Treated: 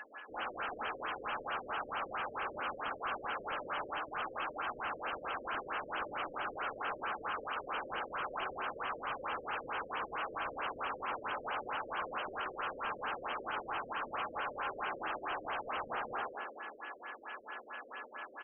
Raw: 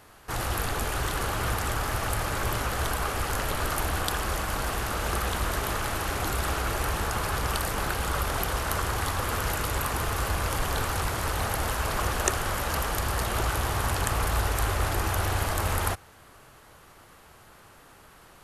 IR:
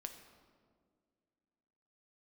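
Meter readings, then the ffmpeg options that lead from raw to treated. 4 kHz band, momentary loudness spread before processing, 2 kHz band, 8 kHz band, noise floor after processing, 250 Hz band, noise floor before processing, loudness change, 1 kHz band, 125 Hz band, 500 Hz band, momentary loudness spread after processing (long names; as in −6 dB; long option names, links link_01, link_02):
−13.5 dB, 2 LU, −8.0 dB, below −40 dB, −53 dBFS, −14.5 dB, −53 dBFS, −11.0 dB, −7.0 dB, −31.0 dB, −9.5 dB, 6 LU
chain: -filter_complex "[1:a]atrim=start_sample=2205,asetrate=70560,aresample=44100[link_01];[0:a][link_01]afir=irnorm=-1:irlink=0,afftfilt=real='re*between(b*sr/4096,210,4600)':imag='im*between(b*sr/4096,210,4600)':win_size=4096:overlap=0.75,acrossover=split=2000[link_02][link_03];[link_02]dynaudnorm=framelen=120:gausssize=3:maxgain=4.5dB[link_04];[link_04][link_03]amix=inputs=2:normalize=0,aeval=exprs='val(0)+0.00158*sin(2*PI*1700*n/s)':channel_layout=same,aderivative,asplit=2[link_05][link_06];[link_06]adelay=178,lowpass=frequency=2600:poles=1,volume=-3.5dB,asplit=2[link_07][link_08];[link_08]adelay=178,lowpass=frequency=2600:poles=1,volume=0.27,asplit=2[link_09][link_10];[link_10]adelay=178,lowpass=frequency=2600:poles=1,volume=0.27,asplit=2[link_11][link_12];[link_12]adelay=178,lowpass=frequency=2600:poles=1,volume=0.27[link_13];[link_05][link_07][link_09][link_11][link_13]amix=inputs=5:normalize=0,areverse,acompressor=threshold=-59dB:ratio=8,areverse,aeval=exprs='0.00447*sin(PI/2*2.51*val(0)/0.00447)':channel_layout=same,equalizer=frequency=1900:width_type=o:width=0.35:gain=-7.5,afftfilt=real='re*lt(b*sr/1024,590*pow(3300/590,0.5+0.5*sin(2*PI*4.5*pts/sr)))':imag='im*lt(b*sr/1024,590*pow(3300/590,0.5+0.5*sin(2*PI*4.5*pts/sr)))':win_size=1024:overlap=0.75,volume=17dB"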